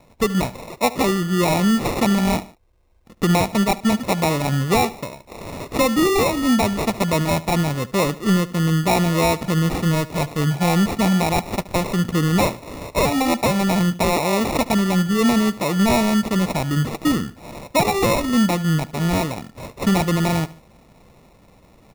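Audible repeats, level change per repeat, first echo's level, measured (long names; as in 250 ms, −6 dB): 2, −7.0 dB, −18.5 dB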